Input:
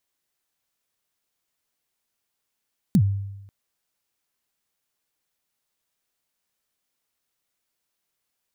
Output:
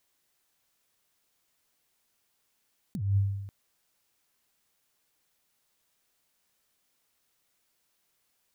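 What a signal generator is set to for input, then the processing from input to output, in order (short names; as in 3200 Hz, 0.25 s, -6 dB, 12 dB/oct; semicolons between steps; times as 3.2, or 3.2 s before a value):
kick drum length 0.54 s, from 230 Hz, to 99 Hz, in 68 ms, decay 0.97 s, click on, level -11.5 dB
negative-ratio compressor -28 dBFS, ratio -1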